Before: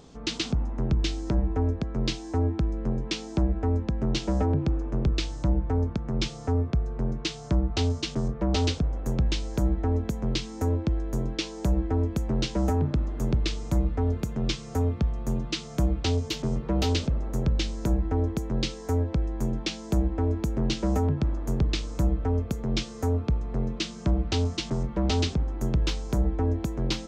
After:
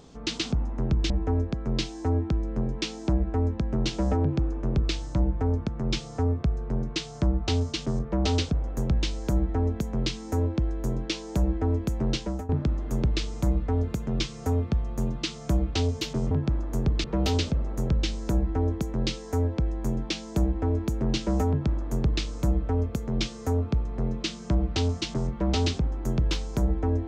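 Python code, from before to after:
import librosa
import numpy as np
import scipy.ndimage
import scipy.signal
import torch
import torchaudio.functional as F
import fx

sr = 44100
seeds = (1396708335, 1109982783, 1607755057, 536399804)

y = fx.edit(x, sr, fx.cut(start_s=1.1, length_s=0.29),
    fx.fade_out_to(start_s=12.42, length_s=0.36, floor_db=-17.5),
    fx.duplicate(start_s=21.05, length_s=0.73, to_s=16.6), tone=tone)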